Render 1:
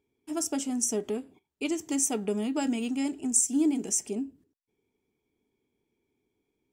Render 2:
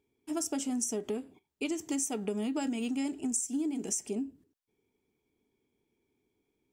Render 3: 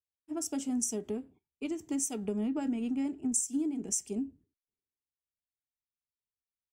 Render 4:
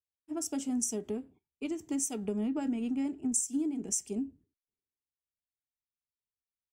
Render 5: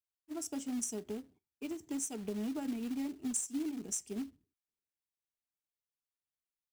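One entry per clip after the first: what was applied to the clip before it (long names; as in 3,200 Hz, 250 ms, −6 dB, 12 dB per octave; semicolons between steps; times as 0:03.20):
downward compressor 10 to 1, threshold −29 dBFS, peak gain reduction 10.5 dB
low-shelf EQ 210 Hz +11.5 dB; multiband upward and downward expander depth 100%; level −4.5 dB
no processing that can be heard
floating-point word with a short mantissa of 2 bits; level −5 dB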